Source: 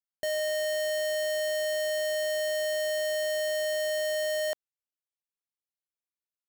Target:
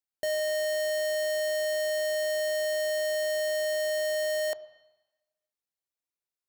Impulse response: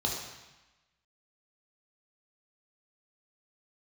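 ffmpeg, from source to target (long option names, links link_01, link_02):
-filter_complex "[0:a]asplit=2[link_01][link_02];[1:a]atrim=start_sample=2205,lowpass=3300[link_03];[link_02][link_03]afir=irnorm=-1:irlink=0,volume=-19dB[link_04];[link_01][link_04]amix=inputs=2:normalize=0"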